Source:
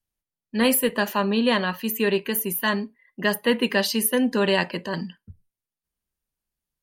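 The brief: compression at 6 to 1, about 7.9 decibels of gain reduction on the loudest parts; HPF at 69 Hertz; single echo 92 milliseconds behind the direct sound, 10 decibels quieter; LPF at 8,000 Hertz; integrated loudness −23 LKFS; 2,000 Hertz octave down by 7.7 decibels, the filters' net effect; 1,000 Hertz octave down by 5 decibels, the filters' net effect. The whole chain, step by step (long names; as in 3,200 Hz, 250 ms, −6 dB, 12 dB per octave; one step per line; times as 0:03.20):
high-pass filter 69 Hz
low-pass filter 8,000 Hz
parametric band 1,000 Hz −4 dB
parametric band 2,000 Hz −8.5 dB
downward compressor 6 to 1, threshold −26 dBFS
single-tap delay 92 ms −10 dB
level +8 dB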